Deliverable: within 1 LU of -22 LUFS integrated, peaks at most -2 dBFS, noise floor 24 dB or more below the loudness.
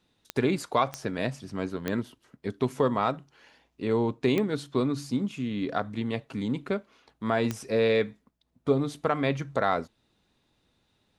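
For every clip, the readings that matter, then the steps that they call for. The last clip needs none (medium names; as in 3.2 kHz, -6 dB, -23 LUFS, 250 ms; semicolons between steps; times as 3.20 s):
clicks found 5; loudness -29.0 LUFS; peak level -11.0 dBFS; loudness target -22.0 LUFS
-> de-click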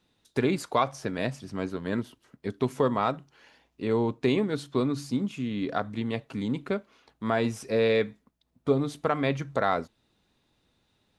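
clicks found 0; loudness -29.0 LUFS; peak level -11.0 dBFS; loudness target -22.0 LUFS
-> trim +7 dB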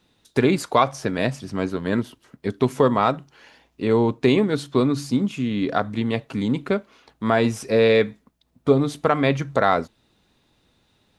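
loudness -22.0 LUFS; peak level -4.0 dBFS; noise floor -66 dBFS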